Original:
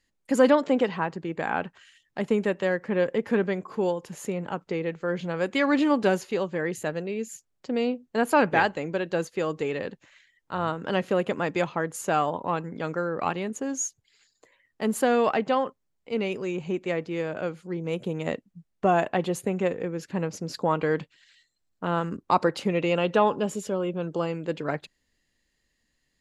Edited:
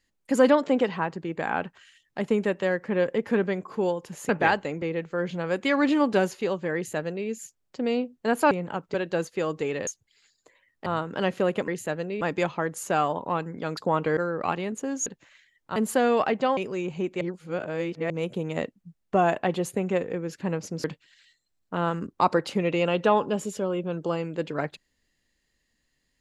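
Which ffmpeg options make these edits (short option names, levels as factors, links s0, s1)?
-filter_complex "[0:a]asplit=17[s0][s1][s2][s3][s4][s5][s6][s7][s8][s9][s10][s11][s12][s13][s14][s15][s16];[s0]atrim=end=4.292[s17];[s1]atrim=start=8.408:end=8.942[s18];[s2]atrim=start=4.718:end=8.412[s19];[s3]atrim=start=4.288:end=4.722[s20];[s4]atrim=start=8.938:end=9.872[s21];[s5]atrim=start=13.838:end=14.832[s22];[s6]atrim=start=10.568:end=11.392[s23];[s7]atrim=start=6.648:end=7.182[s24];[s8]atrim=start=11.388:end=12.952[s25];[s9]atrim=start=20.538:end=20.942[s26];[s10]atrim=start=12.948:end=13.842[s27];[s11]atrim=start=9.868:end=10.572[s28];[s12]atrim=start=14.828:end=15.642[s29];[s13]atrim=start=16.268:end=16.912[s30];[s14]atrim=start=16.908:end=17.802,asetpts=PTS-STARTPTS,areverse[s31];[s15]atrim=start=17.798:end=20.542[s32];[s16]atrim=start=20.938[s33];[s17][s18]acrossfade=d=0.004:c1=hsin:c2=hsin[s34];[s34][s19]acrossfade=d=0.004:c1=hsin:c2=hsin[s35];[s35][s20]acrossfade=d=0.004:c1=hsin:c2=hsin[s36];[s36][s21]acrossfade=d=0.004:c1=hsin:c2=hsin[s37];[s37][s22]acrossfade=d=0.004:c1=hsin:c2=hsin[s38];[s38][s23]acrossfade=d=0.004:c1=hsin:c2=hsin[s39];[s39][s24]acrossfade=d=0.004:c1=hsin:c2=hsin[s40];[s40][s25]acrossfade=d=0.004:c1=hsin:c2=hsin[s41];[s41][s26]acrossfade=d=0.004:c1=hsin:c2=hsin[s42];[s42][s27]acrossfade=d=0.004:c1=hsin:c2=hsin[s43];[s43][s28]acrossfade=d=0.004:c1=hsin:c2=hsin[s44];[s44][s29]acrossfade=d=0.004:c1=hsin:c2=hsin[s45];[s45][s30]acrossfade=d=0.004:c1=hsin:c2=hsin[s46];[s46][s31]acrossfade=d=0.004:c1=hsin:c2=hsin[s47];[s47][s32]acrossfade=d=0.004:c1=hsin:c2=hsin[s48];[s48][s33]acrossfade=d=0.004:c1=hsin:c2=hsin"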